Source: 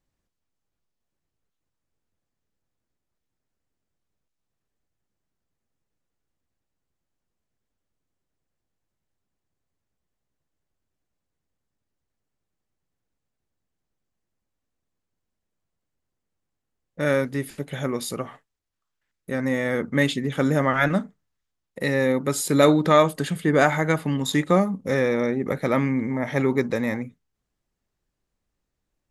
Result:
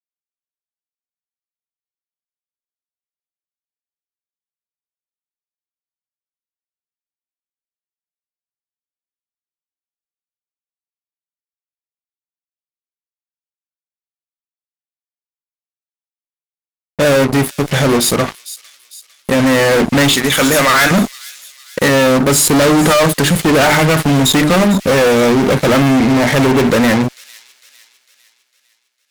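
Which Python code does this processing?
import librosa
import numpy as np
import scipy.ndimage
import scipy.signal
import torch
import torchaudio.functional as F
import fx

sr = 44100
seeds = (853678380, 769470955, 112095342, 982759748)

p1 = fx.tilt_eq(x, sr, slope=4.0, at=(20.13, 20.91))
p2 = fx.hum_notches(p1, sr, base_hz=50, count=8)
p3 = fx.fuzz(p2, sr, gain_db=34.0, gate_db=-38.0)
p4 = p3 + fx.echo_wet_highpass(p3, sr, ms=453, feedback_pct=47, hz=3900.0, wet_db=-13, dry=0)
y = F.gain(torch.from_numpy(p4), 4.5).numpy()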